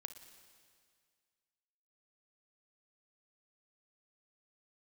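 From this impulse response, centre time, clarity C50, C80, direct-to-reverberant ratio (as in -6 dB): 23 ms, 8.5 dB, 10.5 dB, 8.5 dB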